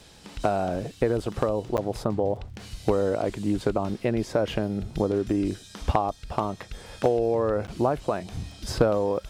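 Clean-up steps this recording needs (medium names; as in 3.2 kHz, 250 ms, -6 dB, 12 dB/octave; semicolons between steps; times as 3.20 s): de-click; interpolate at 1.77/7.67 s, 9.1 ms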